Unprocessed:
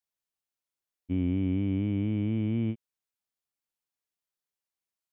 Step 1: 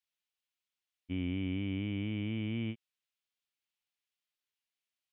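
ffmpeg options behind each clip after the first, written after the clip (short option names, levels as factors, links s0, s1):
-af "equalizer=f=2900:t=o:w=1.8:g=13.5,volume=0.422"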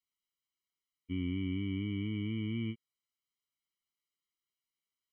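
-af "afftfilt=real='re*eq(mod(floor(b*sr/1024/470),2),0)':imag='im*eq(mod(floor(b*sr/1024/470),2),0)':win_size=1024:overlap=0.75"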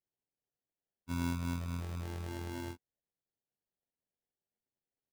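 -af "afftfilt=real='hypot(re,im)*cos(PI*b)':imag='0':win_size=2048:overlap=0.75,acrusher=samples=36:mix=1:aa=0.000001,volume=1.26"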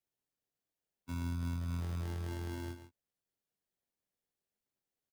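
-filter_complex "[0:a]aecho=1:1:139:0.266,acrossover=split=110[s0][s1];[s1]alimiter=level_in=2.66:limit=0.0631:level=0:latency=1:release=489,volume=0.376[s2];[s0][s2]amix=inputs=2:normalize=0,volume=1.12"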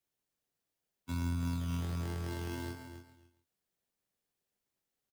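-filter_complex "[0:a]aecho=1:1:274|548:0.335|0.0536,acrossover=split=520[s0][s1];[s0]acrusher=samples=10:mix=1:aa=0.000001:lfo=1:lforange=10:lforate=1.3[s2];[s2][s1]amix=inputs=2:normalize=0,volume=1.41"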